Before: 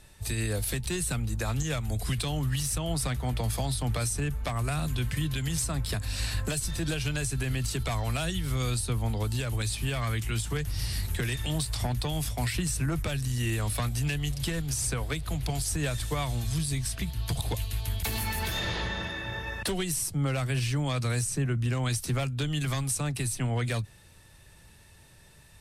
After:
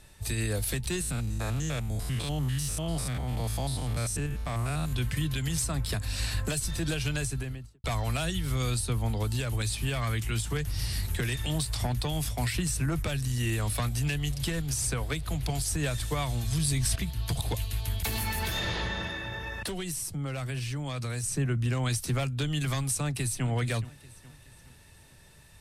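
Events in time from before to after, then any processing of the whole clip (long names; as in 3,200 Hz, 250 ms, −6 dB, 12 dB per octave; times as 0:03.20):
0:01.01–0:04.93: spectrum averaged block by block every 100 ms
0:07.16–0:07.84: fade out and dull
0:16.52–0:16.96: envelope flattener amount 100%
0:19.16–0:21.24: downward compressor 2.5 to 1, threshold −32 dBFS
0:23.03–0:23.47: delay throw 420 ms, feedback 50%, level −16.5 dB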